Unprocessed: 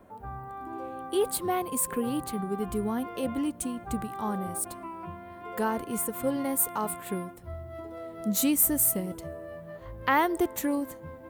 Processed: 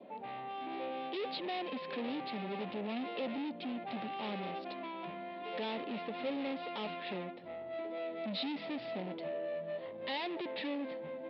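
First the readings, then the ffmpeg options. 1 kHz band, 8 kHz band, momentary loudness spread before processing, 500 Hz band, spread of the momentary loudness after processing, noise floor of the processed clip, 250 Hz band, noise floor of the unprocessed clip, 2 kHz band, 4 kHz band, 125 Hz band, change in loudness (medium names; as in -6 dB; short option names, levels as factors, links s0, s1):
-8.5 dB, under -40 dB, 16 LU, -6.0 dB, 5 LU, -46 dBFS, -9.5 dB, -46 dBFS, -7.0 dB, 0.0 dB, -11.5 dB, -11.0 dB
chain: -af "adynamicequalizer=threshold=0.00282:dfrequency=1600:dqfactor=2.1:tfrequency=1600:tqfactor=2.1:attack=5:release=100:ratio=0.375:range=2.5:mode=boostabove:tftype=bell,aresample=11025,asoftclip=type=tanh:threshold=0.0126,aresample=44100,highpass=f=200:w=0.5412,highpass=f=200:w=1.3066,equalizer=f=340:t=q:w=4:g=-3,equalizer=f=570:t=q:w=4:g=4,equalizer=f=1100:t=q:w=4:g=-8,equalizer=f=1500:t=q:w=4:g=-10,equalizer=f=2600:t=q:w=4:g=5,equalizer=f=3700:t=q:w=4:g=6,lowpass=f=4100:w=0.5412,lowpass=f=4100:w=1.3066,volume=1.41"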